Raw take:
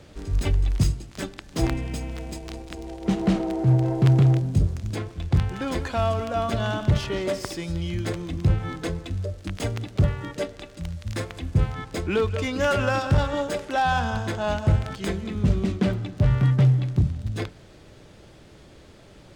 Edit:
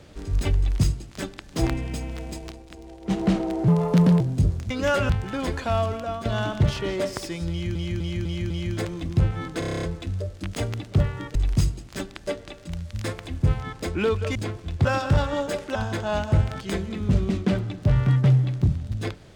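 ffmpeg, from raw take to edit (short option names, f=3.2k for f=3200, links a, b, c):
-filter_complex "[0:a]asplit=25[a][b][c][d][e][f][g][h][i][j][k][l][m][n][o][p][q][r][s][t][u][v][w][x][y];[a]atrim=end=2.512[z];[b]atrim=start=2.508:end=3.102,asetpts=PTS-STARTPTS,volume=-6.5dB[aa];[c]atrim=start=3.098:end=3.684[ab];[d]atrim=start=3.68:end=4.37,asetpts=PTS-STARTPTS,asetrate=58212,aresample=44100,atrim=end_sample=23052,asetpts=PTS-STARTPTS[ac];[e]atrim=start=4.366:end=4.872[ad];[f]atrim=start=12.468:end=12.862[ae];[g]atrim=start=5.368:end=6.53,asetpts=PTS-STARTPTS,afade=t=out:st=0.732:d=0.43:silence=0.375837[af];[h]atrim=start=6.53:end=8.032,asetpts=PTS-STARTPTS,afade=t=in:d=0.004:c=hsin:silence=0.375837[ag];[i]atrim=start=7.778:end=8.032[ah];[j]atrim=start=7.778:end=8.032[ai];[k]atrim=start=7.778:end=8.032[aj];[l]atrim=start=7.778:end=8.902[ak];[m]atrim=start=8.868:end=8.902[al];[n]atrim=start=8.868:end=8.902[am];[o]atrim=start=8.868:end=8.902[an];[p]atrim=start=8.868:end=8.902[ao];[q]atrim=start=8.868:end=8.902[ap];[r]atrim=start=8.868:end=8.902[aq];[s]atrim=start=8.868:end=8.902[ar];[t]atrim=start=8.868:end=10.392[as];[u]atrim=start=0.578:end=1.502[at];[v]atrim=start=10.388:end=12.472[au];[w]atrim=start=4.868:end=5.372[av];[x]atrim=start=12.858:end=13.762[aw];[y]atrim=start=14.098[ax];[z][aa]acrossfade=d=0.004:c1=hsin:c2=hsin[ay];[ay][ab]acrossfade=d=0.004:c1=hsin:c2=hsin[az];[az][ac]acrossfade=d=0.004:c1=hsin:c2=hsin[ba];[ba][ad]acrossfade=d=0.004:c1=hsin:c2=hsin[bb];[bb][ae]acrossfade=d=0.004:c1=hsin:c2=hsin[bc];[af][ag]concat=n=2:v=0:a=1[bd];[bc][bd]acrossfade=d=0.004:c1=hsin:c2=hsin[be];[be][ah]acrossfade=d=0.004:c1=hsin:c2=hsin[bf];[bf][ai]acrossfade=d=0.004:c1=hsin:c2=hsin[bg];[bg][aj]acrossfade=d=0.004:c1=hsin:c2=hsin[bh];[bh][ak]acrossfade=d=0.004:c1=hsin:c2=hsin[bi];[bi][al]acrossfade=d=0.004:c1=hsin:c2=hsin[bj];[bj][am]acrossfade=d=0.004:c1=hsin:c2=hsin[bk];[bk][an]acrossfade=d=0.004:c1=hsin:c2=hsin[bl];[bl][ao]acrossfade=d=0.004:c1=hsin:c2=hsin[bm];[bm][ap]acrossfade=d=0.004:c1=hsin:c2=hsin[bn];[bn][aq]acrossfade=d=0.004:c1=hsin:c2=hsin[bo];[bo][ar]acrossfade=d=0.004:c1=hsin:c2=hsin[bp];[bp][as]acrossfade=d=0.004:c1=hsin:c2=hsin[bq];[bq][at]acrossfade=d=0.004:c1=hsin:c2=hsin[br];[br][au]acrossfade=d=0.004:c1=hsin:c2=hsin[bs];[bs][av]acrossfade=d=0.004:c1=hsin:c2=hsin[bt];[bt][aw]acrossfade=d=0.004:c1=hsin:c2=hsin[bu];[bu][ax]acrossfade=d=0.004:c1=hsin:c2=hsin"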